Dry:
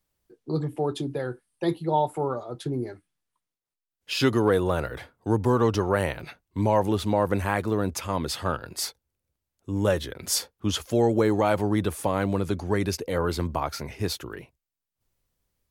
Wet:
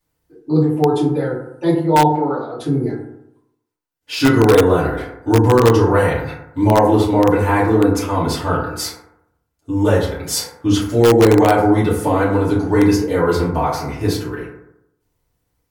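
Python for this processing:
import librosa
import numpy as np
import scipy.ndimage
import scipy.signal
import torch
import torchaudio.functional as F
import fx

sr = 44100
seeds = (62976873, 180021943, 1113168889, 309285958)

p1 = fx.cabinet(x, sr, low_hz=230.0, low_slope=12, high_hz=4600.0, hz=(440.0, 990.0, 1700.0, 4200.0), db=(-5, -6, 7, 10), at=(2.07, 2.57))
p2 = fx.rev_fdn(p1, sr, rt60_s=0.8, lf_ratio=1.0, hf_ratio=0.35, size_ms=20.0, drr_db=-9.5)
p3 = (np.mod(10.0 ** (1.5 / 20.0) * p2 + 1.0, 2.0) - 1.0) / 10.0 ** (1.5 / 20.0)
p4 = p2 + (p3 * librosa.db_to_amplitude(-7.0))
y = p4 * librosa.db_to_amplitude(-4.5)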